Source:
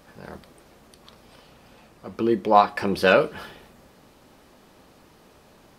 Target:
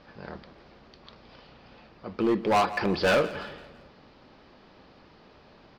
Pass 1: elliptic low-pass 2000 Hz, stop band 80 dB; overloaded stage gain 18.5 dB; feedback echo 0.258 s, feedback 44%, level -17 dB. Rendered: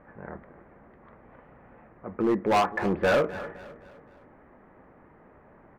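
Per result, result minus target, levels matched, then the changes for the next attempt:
echo 90 ms late; 4000 Hz band -4.5 dB
change: feedback echo 0.168 s, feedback 44%, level -17 dB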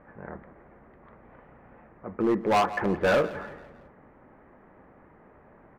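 4000 Hz band -5.0 dB
change: elliptic low-pass 4900 Hz, stop band 80 dB

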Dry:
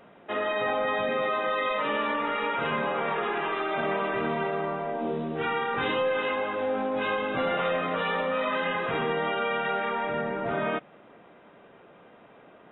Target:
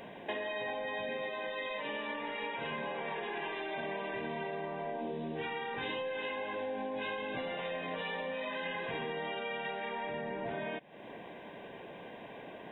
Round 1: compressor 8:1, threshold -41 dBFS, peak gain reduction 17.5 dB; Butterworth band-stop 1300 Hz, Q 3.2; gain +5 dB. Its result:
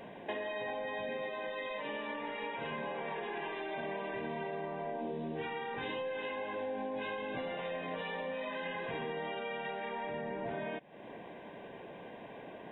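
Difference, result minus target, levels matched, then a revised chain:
4000 Hz band -2.5 dB
compressor 8:1, threshold -41 dBFS, peak gain reduction 17.5 dB; Butterworth band-stop 1300 Hz, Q 3.2; high shelf 2200 Hz +5.5 dB; gain +5 dB

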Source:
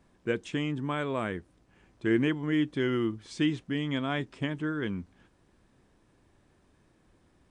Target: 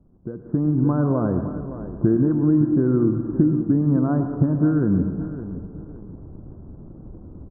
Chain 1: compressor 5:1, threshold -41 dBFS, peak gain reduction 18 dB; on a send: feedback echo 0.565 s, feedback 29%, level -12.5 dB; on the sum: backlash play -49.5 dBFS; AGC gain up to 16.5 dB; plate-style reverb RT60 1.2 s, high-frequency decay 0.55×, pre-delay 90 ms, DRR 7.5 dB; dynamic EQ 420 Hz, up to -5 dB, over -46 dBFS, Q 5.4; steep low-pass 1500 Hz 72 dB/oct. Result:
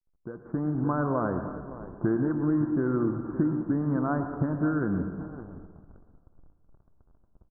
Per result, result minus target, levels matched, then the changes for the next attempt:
1000 Hz band +8.5 dB; backlash: distortion +9 dB
add after steep low-pass: tilt shelf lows +10 dB, about 820 Hz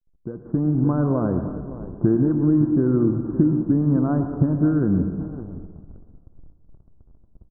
backlash: distortion +9 dB
change: backlash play -60 dBFS

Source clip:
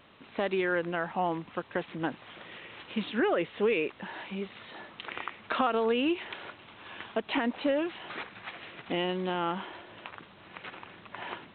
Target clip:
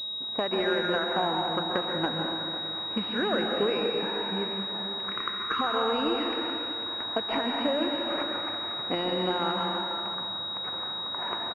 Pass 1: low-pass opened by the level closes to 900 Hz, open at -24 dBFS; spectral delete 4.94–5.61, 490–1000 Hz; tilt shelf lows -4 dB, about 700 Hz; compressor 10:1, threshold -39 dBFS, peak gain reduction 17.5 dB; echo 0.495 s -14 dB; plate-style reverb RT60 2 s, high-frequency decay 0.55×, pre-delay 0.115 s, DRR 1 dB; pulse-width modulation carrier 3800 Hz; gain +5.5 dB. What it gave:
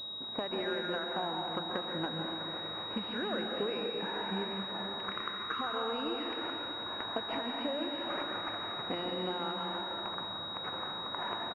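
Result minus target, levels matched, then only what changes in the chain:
compressor: peak gain reduction +8.5 dB
change: compressor 10:1, threshold -29.5 dBFS, peak gain reduction 9 dB

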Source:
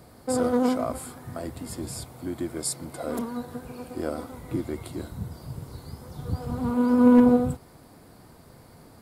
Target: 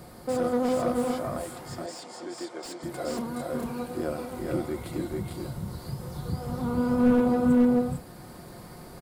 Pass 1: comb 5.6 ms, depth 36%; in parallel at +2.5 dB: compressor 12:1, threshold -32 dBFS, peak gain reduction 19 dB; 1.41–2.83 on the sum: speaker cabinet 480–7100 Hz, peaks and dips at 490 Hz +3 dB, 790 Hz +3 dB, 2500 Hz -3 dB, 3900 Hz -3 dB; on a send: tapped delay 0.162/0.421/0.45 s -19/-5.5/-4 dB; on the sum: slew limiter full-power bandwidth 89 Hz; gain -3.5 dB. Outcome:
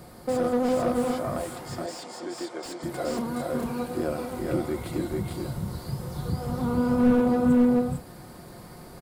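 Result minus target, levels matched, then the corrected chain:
compressor: peak gain reduction -8.5 dB
comb 5.6 ms, depth 36%; in parallel at +2.5 dB: compressor 12:1, threshold -41.5 dBFS, peak gain reduction 27.5 dB; 1.41–2.83 on the sum: speaker cabinet 480–7100 Hz, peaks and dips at 490 Hz +3 dB, 790 Hz +3 dB, 2500 Hz -3 dB, 3900 Hz -3 dB; on a send: tapped delay 0.162/0.421/0.45 s -19/-5.5/-4 dB; on the sum: slew limiter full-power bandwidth 89 Hz; gain -3.5 dB

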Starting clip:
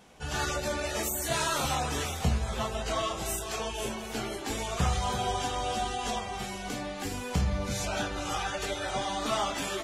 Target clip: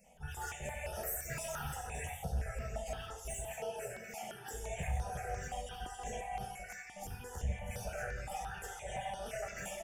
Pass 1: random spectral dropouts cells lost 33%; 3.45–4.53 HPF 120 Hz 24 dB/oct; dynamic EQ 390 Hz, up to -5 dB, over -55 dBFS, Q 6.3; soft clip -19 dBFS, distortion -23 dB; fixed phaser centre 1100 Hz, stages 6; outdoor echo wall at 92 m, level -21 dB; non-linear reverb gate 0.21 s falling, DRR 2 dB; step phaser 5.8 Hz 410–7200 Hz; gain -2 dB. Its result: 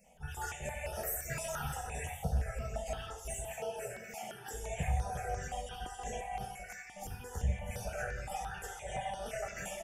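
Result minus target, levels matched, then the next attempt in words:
soft clip: distortion -12 dB
random spectral dropouts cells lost 33%; 3.45–4.53 HPF 120 Hz 24 dB/oct; dynamic EQ 390 Hz, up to -5 dB, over -55 dBFS, Q 6.3; soft clip -28.5 dBFS, distortion -12 dB; fixed phaser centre 1100 Hz, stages 6; outdoor echo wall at 92 m, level -21 dB; non-linear reverb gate 0.21 s falling, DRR 2 dB; step phaser 5.8 Hz 410–7200 Hz; gain -2 dB

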